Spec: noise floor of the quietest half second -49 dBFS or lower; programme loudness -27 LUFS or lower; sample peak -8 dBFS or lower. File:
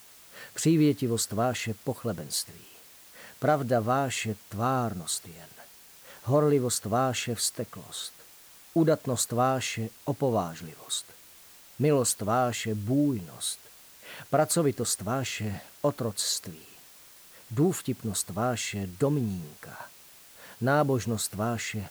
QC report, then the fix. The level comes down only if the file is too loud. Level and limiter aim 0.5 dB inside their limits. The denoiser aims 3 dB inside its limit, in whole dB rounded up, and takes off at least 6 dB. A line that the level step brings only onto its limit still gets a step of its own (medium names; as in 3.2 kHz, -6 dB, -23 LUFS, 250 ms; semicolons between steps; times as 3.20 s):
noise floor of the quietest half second -53 dBFS: pass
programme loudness -28.5 LUFS: pass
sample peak -12.5 dBFS: pass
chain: none needed